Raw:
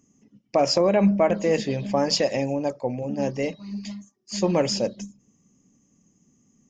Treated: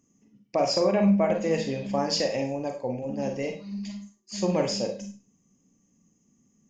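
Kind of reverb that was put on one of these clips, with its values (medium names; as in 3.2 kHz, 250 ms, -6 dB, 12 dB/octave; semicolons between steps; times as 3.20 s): Schroeder reverb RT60 0.34 s, combs from 33 ms, DRR 4 dB; trim -5 dB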